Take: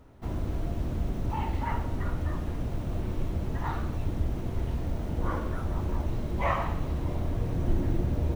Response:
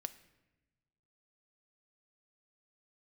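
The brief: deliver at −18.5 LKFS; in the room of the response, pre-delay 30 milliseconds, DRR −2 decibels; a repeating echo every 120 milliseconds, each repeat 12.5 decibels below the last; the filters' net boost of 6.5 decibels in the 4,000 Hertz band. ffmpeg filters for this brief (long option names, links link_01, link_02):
-filter_complex "[0:a]equalizer=frequency=4000:width_type=o:gain=8.5,aecho=1:1:120|240|360:0.237|0.0569|0.0137,asplit=2[link_01][link_02];[1:a]atrim=start_sample=2205,adelay=30[link_03];[link_02][link_03]afir=irnorm=-1:irlink=0,volume=4.5dB[link_04];[link_01][link_04]amix=inputs=2:normalize=0,volume=10dB"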